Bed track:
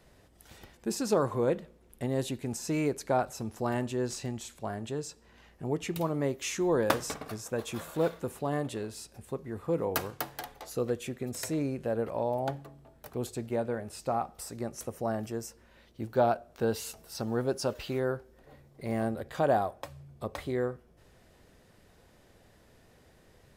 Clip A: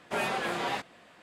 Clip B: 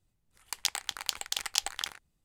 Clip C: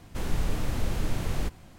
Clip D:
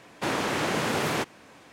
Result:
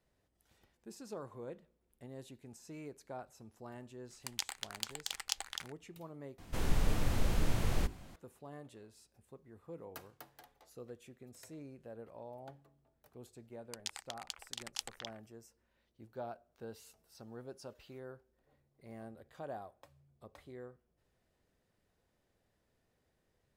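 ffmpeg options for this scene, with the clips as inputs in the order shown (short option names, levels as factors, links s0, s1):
-filter_complex "[2:a]asplit=2[s0][s1];[0:a]volume=0.119[s2];[3:a]bandreject=f=50:t=h:w=6,bandreject=f=100:t=h:w=6,bandreject=f=150:t=h:w=6,bandreject=f=200:t=h:w=6,bandreject=f=250:t=h:w=6,bandreject=f=300:t=h:w=6,bandreject=f=350:t=h:w=6,bandreject=f=400:t=h:w=6[s3];[s1]afwtdn=0.00501[s4];[s2]asplit=2[s5][s6];[s5]atrim=end=6.384[s7];[s3]atrim=end=1.78,asetpts=PTS-STARTPTS,volume=0.75[s8];[s6]atrim=start=8.156[s9];[s0]atrim=end=2.24,asetpts=PTS-STARTPTS,volume=0.398,afade=t=in:d=0.004:c=hsin,afade=t=out:st=2.236:d=0.004:c=hsin,adelay=3740[s10];[s4]atrim=end=2.24,asetpts=PTS-STARTPTS,volume=0.251,afade=t=in:d=0.004:c=hsin,afade=t=out:st=2.236:d=0.004:c=hsin,adelay=13210[s11];[s7][s8]acrossfade=d=0.004:c1=hsin:c2=hsin[s12];[s12][s9]acrossfade=d=0.004:c1=hsin:c2=hsin[s13];[s13][s10][s11]amix=inputs=3:normalize=0"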